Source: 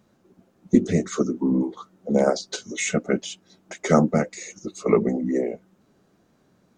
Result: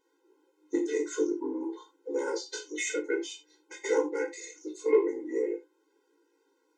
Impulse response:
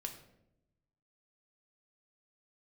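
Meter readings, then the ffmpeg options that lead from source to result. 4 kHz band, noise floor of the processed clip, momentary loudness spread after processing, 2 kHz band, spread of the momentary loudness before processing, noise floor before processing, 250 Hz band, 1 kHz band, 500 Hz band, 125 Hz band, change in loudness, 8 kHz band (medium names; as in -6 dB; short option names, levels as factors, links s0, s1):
-7.0 dB, -73 dBFS, 15 LU, -4.5 dB, 16 LU, -64 dBFS, -11.5 dB, -11.5 dB, -5.0 dB, under -40 dB, -8.0 dB, -6.5 dB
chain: -filter_complex "[0:a]flanger=delay=17.5:depth=3.1:speed=0.48,asplit=2[s0][s1];[s1]asoftclip=type=tanh:threshold=0.0891,volume=0.299[s2];[s0][s2]amix=inputs=2:normalize=0[s3];[1:a]atrim=start_sample=2205,atrim=end_sample=3969[s4];[s3][s4]afir=irnorm=-1:irlink=0,afftfilt=real='re*eq(mod(floor(b*sr/1024/270),2),1)':imag='im*eq(mod(floor(b*sr/1024/270),2),1)':win_size=1024:overlap=0.75"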